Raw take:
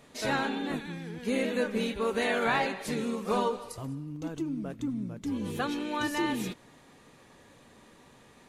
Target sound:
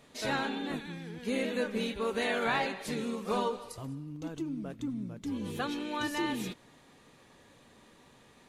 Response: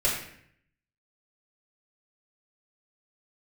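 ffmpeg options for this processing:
-af "equalizer=f=3.6k:w=1.5:g=2.5,volume=-3dB"

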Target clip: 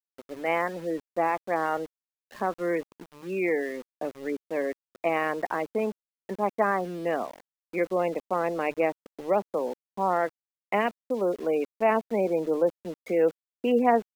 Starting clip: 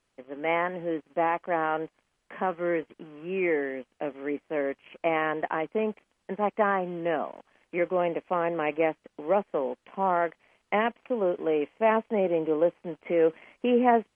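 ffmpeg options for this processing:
-af "afftfilt=real='re*gte(hypot(re,im),0.0178)':imag='im*gte(hypot(re,im),0.0178)':win_size=1024:overlap=0.75,bandreject=f=50:t=h:w=6,bandreject=f=100:t=h:w=6,bandreject=f=150:t=h:w=6,aeval=exprs='val(0)*gte(abs(val(0)),0.0075)':c=same"

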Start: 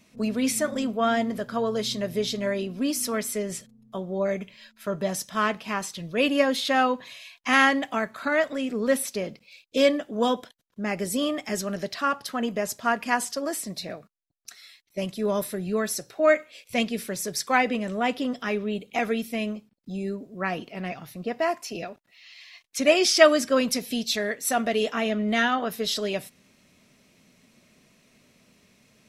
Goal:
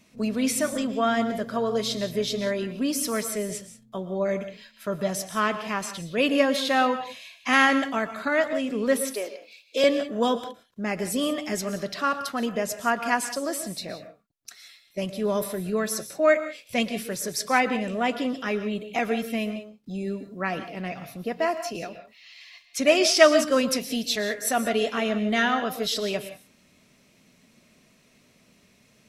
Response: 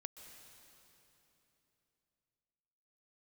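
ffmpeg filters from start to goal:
-filter_complex "[0:a]asettb=1/sr,asplit=3[a][b][c];[a]atrim=end=9.114[d];[b]atrim=start=9.11:end=9.84,asetpts=PTS-STARTPTS,afade=t=in:d=0.004:c=qsin,afade=t=out:st=0.726:d=0.004:c=qsin,highpass=f=350:w=0.5412,highpass=f=350:w=1.3066[e];[c]atrim=start=9.836[f];[d][e]acrossfade=d=0.004:c1=hsin:c2=qsin[g];[g][f]acrossfade=d=0.004:c1=qsin:c2=hsin[h];[1:a]atrim=start_sample=2205,afade=t=out:st=0.26:d=0.01,atrim=end_sample=11907,asetrate=48510,aresample=44100[i];[h][i]afir=irnorm=-1:irlink=0,volume=6.5dB"

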